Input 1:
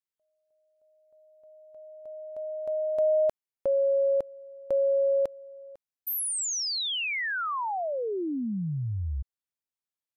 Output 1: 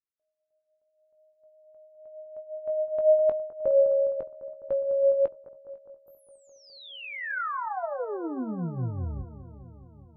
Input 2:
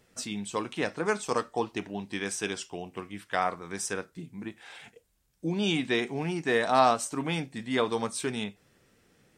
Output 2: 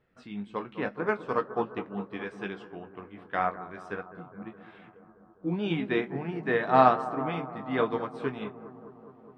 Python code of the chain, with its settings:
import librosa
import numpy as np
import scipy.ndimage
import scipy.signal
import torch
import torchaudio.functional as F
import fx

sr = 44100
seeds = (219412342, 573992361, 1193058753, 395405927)

p1 = fx.peak_eq(x, sr, hz=1400.0, db=4.0, octaves=0.79)
p2 = p1 + fx.echo_bbd(p1, sr, ms=206, stages=2048, feedback_pct=76, wet_db=-10.5, dry=0)
p3 = fx.chorus_voices(p2, sr, voices=6, hz=0.38, base_ms=19, depth_ms=4.7, mix_pct=30)
p4 = fx.air_absorb(p3, sr, metres=410.0)
p5 = fx.upward_expand(p4, sr, threshold_db=-40.0, expansion=1.5)
y = p5 * librosa.db_to_amplitude(6.0)